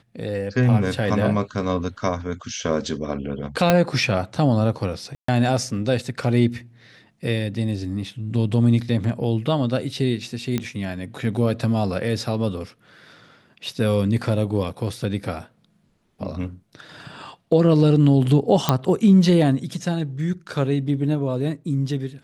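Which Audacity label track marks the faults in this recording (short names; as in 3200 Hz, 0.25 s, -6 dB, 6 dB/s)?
3.700000	3.700000	pop -2 dBFS
5.150000	5.280000	gap 0.134 s
10.580000	10.580000	pop -11 dBFS
18.690000	18.690000	pop -3 dBFS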